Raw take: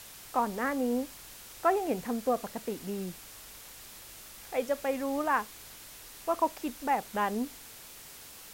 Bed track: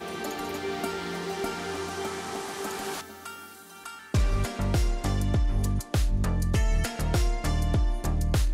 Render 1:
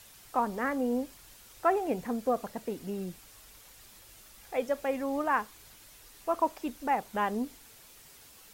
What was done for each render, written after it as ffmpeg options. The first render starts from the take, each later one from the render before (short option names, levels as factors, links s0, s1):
-af "afftdn=nr=7:nf=-49"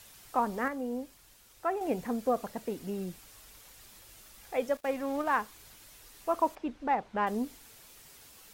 -filter_complex "[0:a]asettb=1/sr,asplit=3[s0][s1][s2];[s0]atrim=end=4.774[s3];[s1]atrim=start=4.77:end=5.37,asetpts=PTS-STARTPTS,afade=t=in:d=0.004:c=qsin,afade=t=out:st=0.596:d=0.004:c=qsin,aeval=exprs='sgn(val(0))*max(abs(val(0))-0.00473,0)':c=same[s4];[s2]atrim=start=5.366[s5];[s3][s4]acrossfade=d=0.004:c1=hsin:c2=qsin[s6];[s6][s5]acrossfade=d=0.004:c1=qsin:c2=hsin,asettb=1/sr,asplit=3[s7][s8][s9];[s7]atrim=end=6.554[s10];[s8]atrim=start=6.55:end=7.27,asetpts=PTS-STARTPTS,afade=t=in:d=0.004:c=qsin,afade=t=out:st=0.716:d=0.004:c=qsin,adynamicsmooth=sensitivity=1.5:basefreq=3200[s11];[s9]atrim=start=7.266[s12];[s10][s11]acrossfade=d=0.004:c1=hsin:c2=qsin[s13];[s13][s12]acrossfade=d=0.004:c1=qsin:c2=hsin,asplit=3[s14][s15][s16];[s14]atrim=end=0.682[s17];[s15]atrim=start=0.678:end=1.812,asetpts=PTS-STARTPTS,volume=0.531[s18];[s16]atrim=start=1.808[s19];[s17][s18]acrossfade=d=0.004:c1=hsin:c2=hsin[s20];[s20][s19]acrossfade=d=0.004:c1=hsin:c2=hsin"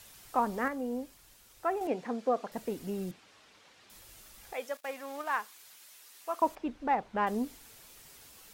-filter_complex "[0:a]asettb=1/sr,asplit=3[s0][s1][s2];[s0]atrim=end=1.874[s3];[s1]atrim=start=1.87:end=2.52,asetpts=PTS-STARTPTS,afade=t=in:d=0.004:c=qsin,afade=t=out:st=0.646:d=0.004:c=qsin,highpass=250,lowpass=5200[s4];[s2]atrim=start=2.516[s5];[s3][s4]acrossfade=d=0.004:c1=hsin:c2=qsin[s6];[s6][s5]acrossfade=d=0.004:c1=qsin:c2=hsin,asettb=1/sr,asplit=3[s7][s8][s9];[s7]atrim=end=3.114[s10];[s8]atrim=start=3.11:end=3.9,asetpts=PTS-STARTPTS,afade=t=in:d=0.004:c=qsin,afade=t=out:st=0.786:d=0.004:c=qsin,highpass=170,lowpass=4100[s11];[s9]atrim=start=3.896[s12];[s10][s11]acrossfade=d=0.004:c1=hsin:c2=qsin[s13];[s13][s12]acrossfade=d=0.004:c1=qsin:c2=hsin,asettb=1/sr,asplit=3[s14][s15][s16];[s14]atrim=end=4.534[s17];[s15]atrim=start=4.53:end=6.42,asetpts=PTS-STARTPTS,afade=t=in:d=0.004:c=qsin,afade=t=out:st=1.886:d=0.004:c=qsin,highpass=f=1200:p=1[s18];[s16]atrim=start=6.416[s19];[s17][s18]acrossfade=d=0.004:c1=hsin:c2=qsin[s20];[s20][s19]acrossfade=d=0.004:c1=qsin:c2=hsin"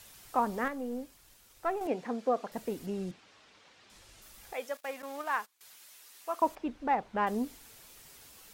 -filter_complex "[0:a]asettb=1/sr,asplit=3[s0][s1][s2];[s0]atrim=end=0.644[s3];[s1]atrim=start=0.64:end=1.86,asetpts=PTS-STARTPTS,afade=t=in:d=0.004:c=qsin,afade=t=out:st=1.216:d=0.004:c=qsin,aeval=exprs='if(lt(val(0),0),0.708*val(0),val(0))':c=same[s4];[s2]atrim=start=1.856[s5];[s3][s4]acrossfade=d=0.004:c1=hsin:c2=qsin[s6];[s6][s5]acrossfade=d=0.004:c1=qsin:c2=hsin,asettb=1/sr,asplit=3[s7][s8][s9];[s7]atrim=end=2.864[s10];[s8]atrim=start=2.86:end=4.22,asetpts=PTS-STARTPTS,afade=t=in:d=0.004:c=qsin,afade=t=out:st=1.356:d=0.004:c=qsin,lowpass=7500[s11];[s9]atrim=start=4.216[s12];[s10][s11]acrossfade=d=0.004:c1=hsin:c2=qsin[s13];[s13][s12]acrossfade=d=0.004:c1=qsin:c2=hsin,asettb=1/sr,asplit=3[s14][s15][s16];[s14]atrim=end=5.024[s17];[s15]atrim=start=5.02:end=5.61,asetpts=PTS-STARTPTS,afade=t=in:d=0.004:c=qsin,afade=t=out:st=0.586:d=0.004:c=qsin,agate=range=0.1:threshold=0.00447:ratio=16:release=100:detection=peak[s18];[s16]atrim=start=5.606[s19];[s17][s18]acrossfade=d=0.004:c1=hsin:c2=qsin[s20];[s20][s19]acrossfade=d=0.004:c1=qsin:c2=hsin"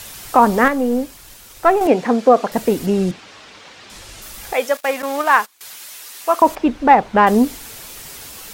-af "acontrast=74,alimiter=level_in=3.98:limit=0.891:release=50:level=0:latency=1"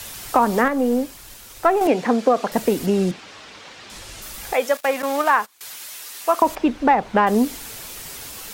-filter_complex "[0:a]acrossover=split=150|1500[s0][s1][s2];[s0]acompressor=threshold=0.0126:ratio=4[s3];[s1]acompressor=threshold=0.2:ratio=4[s4];[s2]acompressor=threshold=0.0501:ratio=4[s5];[s3][s4][s5]amix=inputs=3:normalize=0"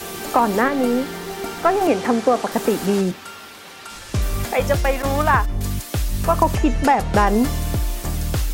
-filter_complex "[1:a]volume=1.33[s0];[0:a][s0]amix=inputs=2:normalize=0"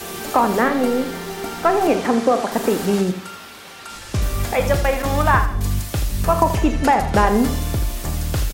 -filter_complex "[0:a]asplit=2[s0][s1];[s1]adelay=39,volume=0.237[s2];[s0][s2]amix=inputs=2:normalize=0,aecho=1:1:81|162|243|324:0.282|0.104|0.0386|0.0143"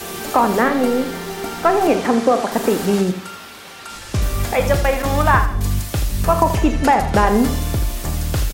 -af "volume=1.19,alimiter=limit=0.794:level=0:latency=1"